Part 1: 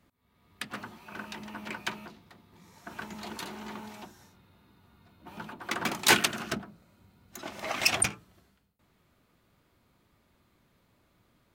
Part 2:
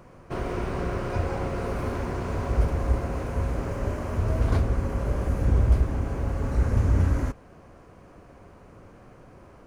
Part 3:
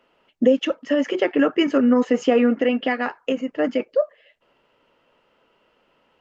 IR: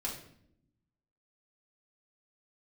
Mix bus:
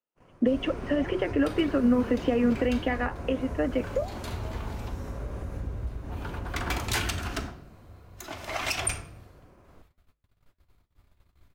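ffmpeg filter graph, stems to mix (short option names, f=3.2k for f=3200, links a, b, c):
-filter_complex "[0:a]asubboost=boost=9:cutoff=63,alimiter=limit=-19dB:level=0:latency=1:release=165,adelay=850,volume=3dB,asplit=2[a][b];[b]volume=-4dB[c];[1:a]acompressor=threshold=-24dB:ratio=5,adelay=150,volume=-2.5dB,asplit=2[d][e];[e]volume=-19dB[f];[2:a]lowpass=2.8k,volume=1dB,asplit=2[g][h];[h]apad=whole_len=546759[i];[a][i]sidechaincompress=threshold=-26dB:ratio=8:attack=16:release=1060[j];[3:a]atrim=start_sample=2205[k];[c][f]amix=inputs=2:normalize=0[l];[l][k]afir=irnorm=-1:irlink=0[m];[j][d][g][m]amix=inputs=4:normalize=0,agate=range=-30dB:threshold=-51dB:ratio=16:detection=peak,acrossover=split=250|3000[n][o][p];[o]acompressor=threshold=-20dB:ratio=6[q];[n][q][p]amix=inputs=3:normalize=0,flanger=delay=5.5:depth=6.3:regen=-90:speed=1.7:shape=sinusoidal"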